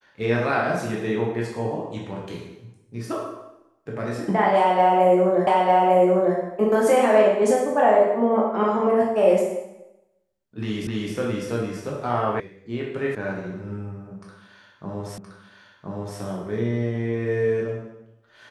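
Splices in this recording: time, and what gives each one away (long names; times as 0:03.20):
0:05.47: the same again, the last 0.9 s
0:10.87: the same again, the last 0.26 s
0:12.40: cut off before it has died away
0:13.15: cut off before it has died away
0:15.18: the same again, the last 1.02 s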